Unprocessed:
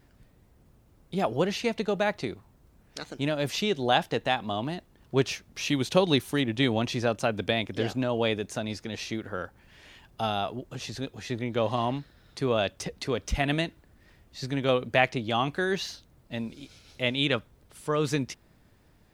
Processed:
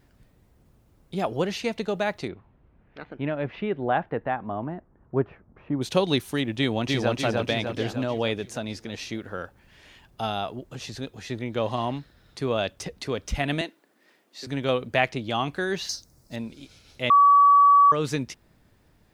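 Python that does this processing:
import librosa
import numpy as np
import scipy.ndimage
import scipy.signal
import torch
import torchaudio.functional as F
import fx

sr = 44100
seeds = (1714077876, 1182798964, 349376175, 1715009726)

y = fx.lowpass(x, sr, hz=fx.line((2.27, 3100.0), (5.81, 1200.0)), slope=24, at=(2.27, 5.81), fade=0.02)
y = fx.echo_throw(y, sr, start_s=6.58, length_s=0.59, ms=300, feedback_pct=55, wet_db=-2.0)
y = fx.highpass(y, sr, hz=260.0, slope=24, at=(13.61, 14.47))
y = fx.high_shelf_res(y, sr, hz=4100.0, db=9.0, q=3.0, at=(15.89, 16.36))
y = fx.edit(y, sr, fx.bleep(start_s=17.1, length_s=0.82, hz=1140.0, db=-12.0), tone=tone)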